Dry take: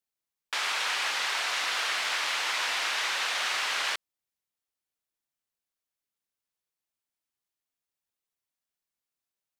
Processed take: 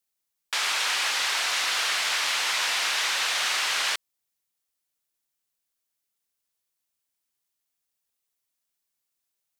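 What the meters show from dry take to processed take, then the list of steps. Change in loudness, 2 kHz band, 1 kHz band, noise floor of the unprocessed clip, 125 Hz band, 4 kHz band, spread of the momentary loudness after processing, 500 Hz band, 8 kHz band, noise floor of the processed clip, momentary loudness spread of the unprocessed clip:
+4.0 dB, +2.5 dB, +1.5 dB, below −85 dBFS, can't be measured, +4.5 dB, 3 LU, +1.5 dB, +7.0 dB, −82 dBFS, 3 LU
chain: high-shelf EQ 4,000 Hz +7.5 dB
in parallel at −12 dB: soft clipping −28.5 dBFS, distortion −10 dB

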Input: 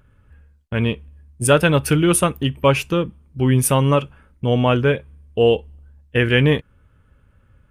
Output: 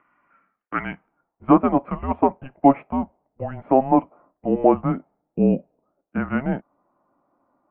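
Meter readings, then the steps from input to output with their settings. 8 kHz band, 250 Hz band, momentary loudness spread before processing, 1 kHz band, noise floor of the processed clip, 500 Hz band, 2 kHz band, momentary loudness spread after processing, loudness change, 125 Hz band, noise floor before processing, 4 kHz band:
below −40 dB, 0.0 dB, 10 LU, +2.5 dB, −80 dBFS, −4.5 dB, −12.5 dB, 16 LU, −3.0 dB, −12.0 dB, −57 dBFS, below −25 dB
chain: low-pass filter sweep 2,300 Hz → 930 Hz, 0:00.45–0:01.64
high-frequency loss of the air 340 metres
single-sideband voice off tune −270 Hz 550–3,500 Hz
level +2 dB

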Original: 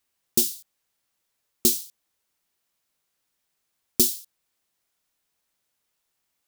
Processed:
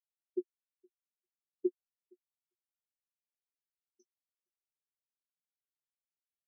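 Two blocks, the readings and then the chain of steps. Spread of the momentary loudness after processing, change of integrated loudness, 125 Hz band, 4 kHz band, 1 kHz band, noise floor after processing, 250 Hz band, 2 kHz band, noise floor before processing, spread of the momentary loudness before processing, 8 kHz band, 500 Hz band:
7 LU, −17.0 dB, below −35 dB, below −40 dB, can't be measured, below −85 dBFS, −9.0 dB, below −30 dB, −78 dBFS, 11 LU, below −40 dB, −4.0 dB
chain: band-pass filter sweep 500 Hz → 3,500 Hz, 0:03.38–0:05.20
dead-zone distortion −50.5 dBFS
low-pass with resonance 6,000 Hz, resonance Q 5.9
on a send: multi-tap delay 466/864 ms −8/−16.5 dB
on the sum: every bin expanded away from the loudest bin 4 to 1

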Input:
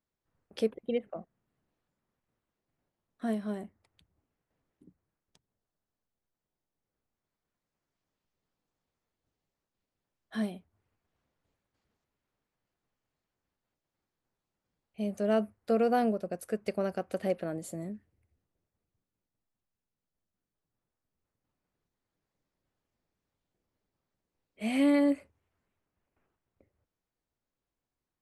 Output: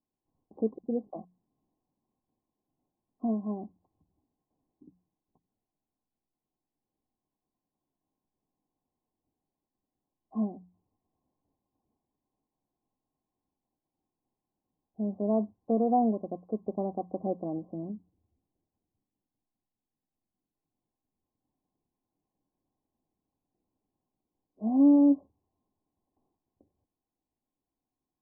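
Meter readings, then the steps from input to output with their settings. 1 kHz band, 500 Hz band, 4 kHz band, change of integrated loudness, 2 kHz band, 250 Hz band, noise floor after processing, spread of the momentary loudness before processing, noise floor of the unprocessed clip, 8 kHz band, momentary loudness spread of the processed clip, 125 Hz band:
+2.5 dB, −2.0 dB, below −30 dB, +2.5 dB, below −40 dB, +4.5 dB, below −85 dBFS, 16 LU, below −85 dBFS, below −25 dB, 17 LU, +1.0 dB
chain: Chebyshev low-pass with heavy ripple 1,100 Hz, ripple 9 dB
mains-hum notches 60/120/180 Hz
level +5.5 dB

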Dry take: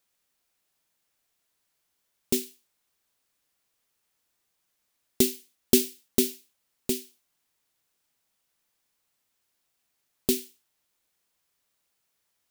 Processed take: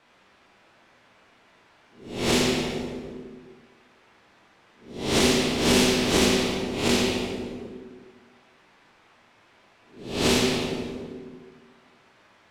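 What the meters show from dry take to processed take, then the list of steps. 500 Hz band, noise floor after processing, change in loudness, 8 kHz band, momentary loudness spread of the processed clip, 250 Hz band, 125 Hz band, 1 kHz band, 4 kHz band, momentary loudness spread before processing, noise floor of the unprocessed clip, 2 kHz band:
+7.5 dB, −59 dBFS, +3.5 dB, +3.0 dB, 19 LU, +7.5 dB, +13.0 dB, +24.0 dB, +11.5 dB, 11 LU, −77 dBFS, +18.5 dB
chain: peak hold with a rise ahead of every peak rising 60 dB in 0.40 s
low-pass filter 2,200 Hz 12 dB per octave
low-shelf EQ 72 Hz −8.5 dB
brickwall limiter −17.5 dBFS, peak gain reduction 10.5 dB
dense smooth reverb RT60 1.5 s, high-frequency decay 0.75×, pre-delay 0 ms, DRR −4.5 dB
every bin compressed towards the loudest bin 2 to 1
level +3 dB

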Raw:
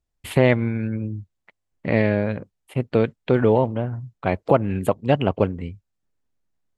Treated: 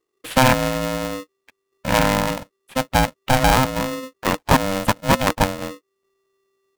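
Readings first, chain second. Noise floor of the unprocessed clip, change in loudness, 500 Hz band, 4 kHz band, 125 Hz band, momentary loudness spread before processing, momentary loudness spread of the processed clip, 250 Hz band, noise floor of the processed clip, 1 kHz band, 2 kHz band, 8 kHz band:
−78 dBFS, +2.0 dB, −2.0 dB, +14.0 dB, −1.0 dB, 13 LU, 13 LU, 0.0 dB, −77 dBFS, +9.0 dB, +7.0 dB, can't be measured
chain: ring modulator with a square carrier 390 Hz
level +1.5 dB

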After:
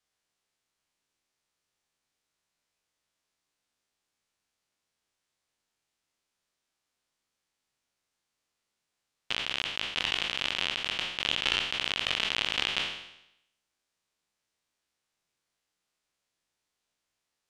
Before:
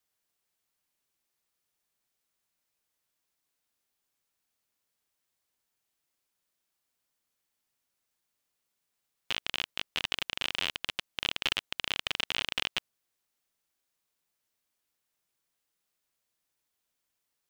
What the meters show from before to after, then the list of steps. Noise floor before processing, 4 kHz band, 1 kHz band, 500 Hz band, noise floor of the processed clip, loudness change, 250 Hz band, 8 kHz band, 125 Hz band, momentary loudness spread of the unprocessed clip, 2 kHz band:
−83 dBFS, +3.5 dB, +3.5 dB, +3.5 dB, −85 dBFS, +3.5 dB, +3.5 dB, +1.5 dB, +3.5 dB, 5 LU, +3.5 dB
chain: peak hold with a decay on every bin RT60 0.81 s
low-pass filter 7,600 Hz 12 dB per octave

